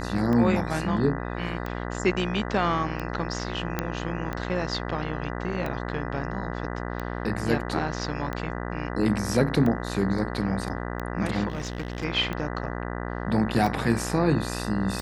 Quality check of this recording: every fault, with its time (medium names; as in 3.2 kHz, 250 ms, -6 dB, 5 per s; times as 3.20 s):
buzz 60 Hz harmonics 33 -32 dBFS
tick 45 rpm -18 dBFS
3.79 s: pop -11 dBFS
11.48–12.05 s: clipped -26 dBFS